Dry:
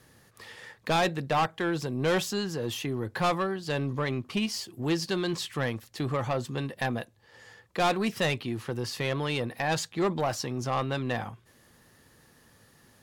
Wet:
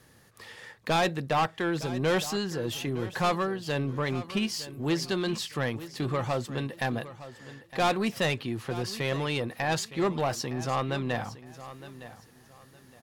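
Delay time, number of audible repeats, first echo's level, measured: 0.912 s, 2, -15.0 dB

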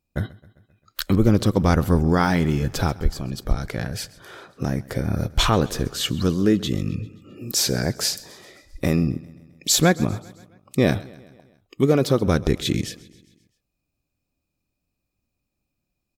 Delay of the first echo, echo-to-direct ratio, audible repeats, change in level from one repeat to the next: 0.132 s, -19.0 dB, 3, -4.5 dB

